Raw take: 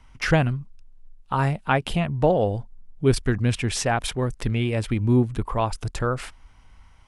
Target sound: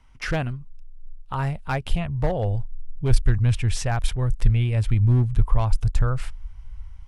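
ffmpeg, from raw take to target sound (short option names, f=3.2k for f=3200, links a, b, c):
-af "volume=13.5dB,asoftclip=hard,volume=-13.5dB,asubboost=boost=11.5:cutoff=87,volume=-4.5dB"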